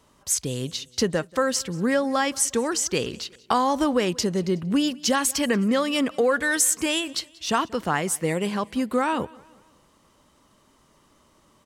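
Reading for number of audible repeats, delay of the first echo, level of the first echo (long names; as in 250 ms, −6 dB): 2, 185 ms, −23.5 dB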